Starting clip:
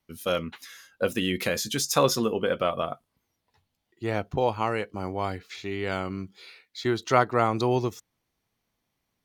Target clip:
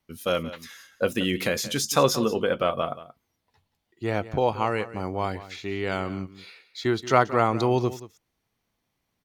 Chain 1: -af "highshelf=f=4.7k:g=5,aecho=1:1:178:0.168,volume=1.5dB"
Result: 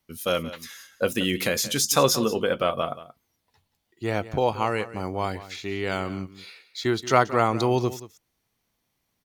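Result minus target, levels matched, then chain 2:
8000 Hz band +4.0 dB
-af "highshelf=f=4.7k:g=-2,aecho=1:1:178:0.168,volume=1.5dB"

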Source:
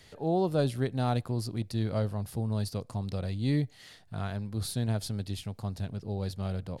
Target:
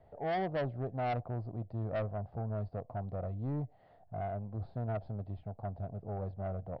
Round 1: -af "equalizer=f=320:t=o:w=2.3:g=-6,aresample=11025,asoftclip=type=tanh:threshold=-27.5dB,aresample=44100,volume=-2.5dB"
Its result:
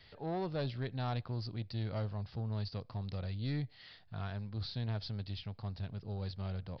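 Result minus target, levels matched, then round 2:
500 Hz band -4.5 dB
-af "lowpass=f=690:t=q:w=4.8,equalizer=f=320:t=o:w=2.3:g=-6,aresample=11025,asoftclip=type=tanh:threshold=-27.5dB,aresample=44100,volume=-2.5dB"

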